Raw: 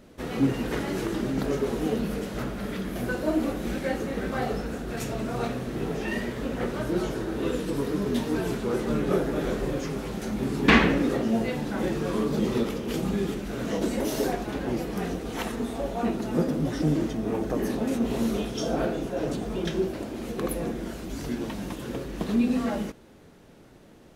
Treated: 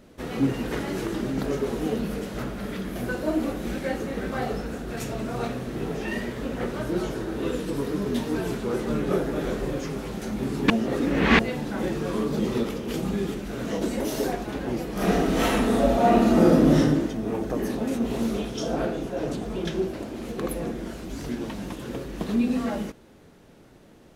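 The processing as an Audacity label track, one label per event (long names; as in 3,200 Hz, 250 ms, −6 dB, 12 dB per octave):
10.700000	11.390000	reverse
14.930000	16.780000	thrown reverb, RT60 1 s, DRR −9 dB
18.170000	21.920000	highs frequency-modulated by the lows depth 0.13 ms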